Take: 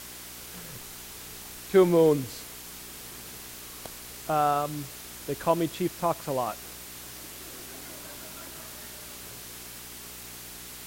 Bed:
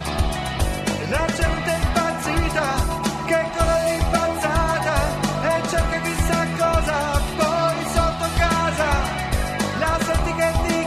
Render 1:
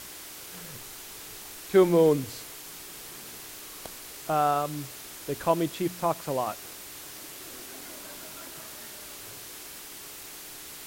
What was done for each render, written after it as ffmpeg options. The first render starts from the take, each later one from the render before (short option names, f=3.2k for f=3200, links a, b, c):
-af "bandreject=f=60:t=h:w=4,bandreject=f=120:t=h:w=4,bandreject=f=180:t=h:w=4,bandreject=f=240:t=h:w=4"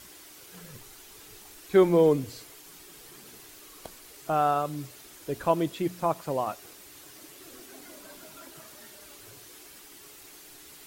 -af "afftdn=nr=8:nf=-43"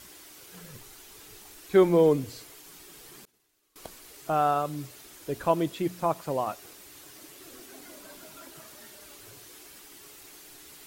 -filter_complex "[0:a]asettb=1/sr,asplit=3[a][b][c];[a]atrim=end=3.254[d];[b]atrim=start=3.25:end=3.76,asetpts=PTS-STARTPTS,afade=t=in:d=0.004:c=qsin,afade=t=out:st=0.506:d=0.004:c=qsin,agate=range=-33dB:threshold=-36dB:ratio=3:release=100:detection=peak[e];[c]atrim=start=3.756[f];[d][e]acrossfade=d=0.004:c1=hsin:c2=qsin[g];[g][f]acrossfade=d=0.004:c1=qsin:c2=hsin"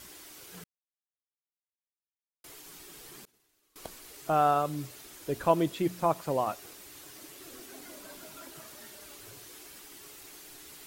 -filter_complex "[0:a]asplit=3[a][b][c];[a]atrim=end=0.64,asetpts=PTS-STARTPTS,afade=t=out:st=0.636:d=0.004:c=hsin[d];[b]atrim=start=0.64:end=2.44,asetpts=PTS-STARTPTS,volume=0[e];[c]atrim=start=2.44,asetpts=PTS-STARTPTS,afade=t=in:d=0.004:c=hsin[f];[d][e][f]concat=n=3:v=0:a=1"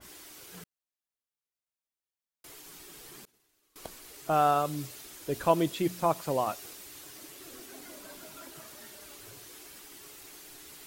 -af "adynamicequalizer=threshold=0.00631:dfrequency=2400:dqfactor=0.7:tfrequency=2400:tqfactor=0.7:attack=5:release=100:ratio=0.375:range=2:mode=boostabove:tftype=highshelf"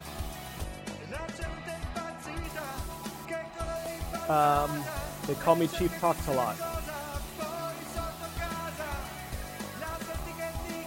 -filter_complex "[1:a]volume=-16.5dB[a];[0:a][a]amix=inputs=2:normalize=0"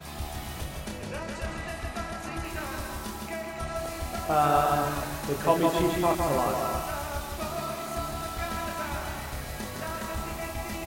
-filter_complex "[0:a]asplit=2[a][b];[b]adelay=28,volume=-5.5dB[c];[a][c]amix=inputs=2:normalize=0,aecho=1:1:160|272|350.4|405.3|443.7:0.631|0.398|0.251|0.158|0.1"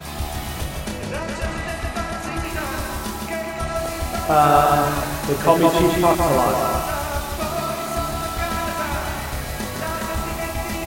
-af "volume=8.5dB,alimiter=limit=-1dB:level=0:latency=1"